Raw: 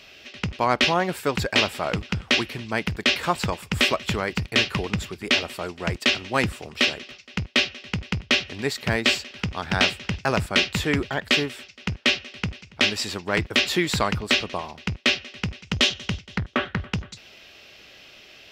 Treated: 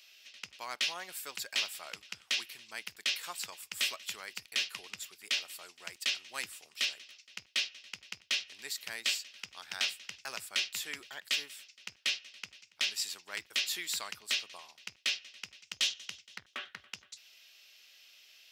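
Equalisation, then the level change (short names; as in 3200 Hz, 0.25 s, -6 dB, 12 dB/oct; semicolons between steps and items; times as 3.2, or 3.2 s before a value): differentiator; -3.5 dB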